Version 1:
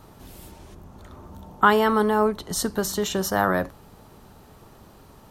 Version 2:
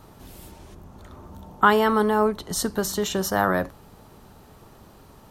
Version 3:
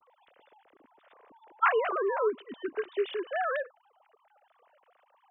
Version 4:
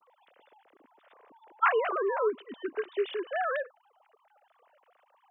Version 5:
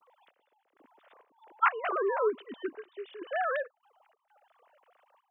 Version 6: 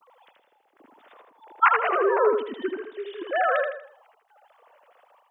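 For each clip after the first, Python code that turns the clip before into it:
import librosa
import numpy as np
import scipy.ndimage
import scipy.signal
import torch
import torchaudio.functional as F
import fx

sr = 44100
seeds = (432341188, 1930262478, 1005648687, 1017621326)

y1 = x
y2 = fx.sine_speech(y1, sr)
y2 = y2 * librosa.db_to_amplitude(-8.0)
y3 = scipy.signal.sosfilt(scipy.signal.butter(2, 160.0, 'highpass', fs=sr, output='sos'), y2)
y4 = fx.step_gate(y3, sr, bpm=98, pattern='xx...xxx.xx.xxxx', floor_db=-12.0, edge_ms=4.5)
y5 = fx.echo_feedback(y4, sr, ms=80, feedback_pct=37, wet_db=-4.5)
y5 = y5 * librosa.db_to_amplitude(6.5)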